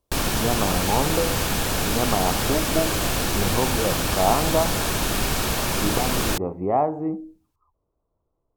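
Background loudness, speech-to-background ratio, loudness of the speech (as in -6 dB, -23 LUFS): -23.5 LUFS, -3.0 dB, -26.5 LUFS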